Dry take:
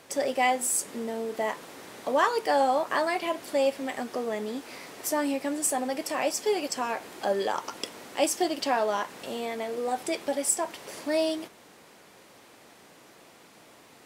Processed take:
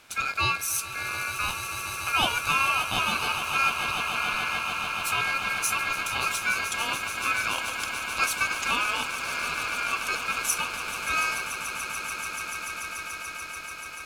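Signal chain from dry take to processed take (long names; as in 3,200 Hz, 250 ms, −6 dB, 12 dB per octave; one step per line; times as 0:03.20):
loose part that buzzes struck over −45 dBFS, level −28 dBFS
echo that builds up and dies away 145 ms, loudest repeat 8, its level −13 dB
ring modulation 1,900 Hz
level +1.5 dB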